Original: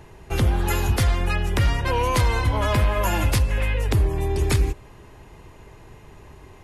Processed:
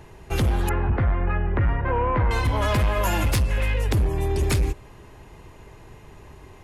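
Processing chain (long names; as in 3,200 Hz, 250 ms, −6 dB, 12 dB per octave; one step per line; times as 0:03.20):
hard clipping −16.5 dBFS, distortion −17 dB
0:00.69–0:02.31: low-pass filter 1,900 Hz 24 dB per octave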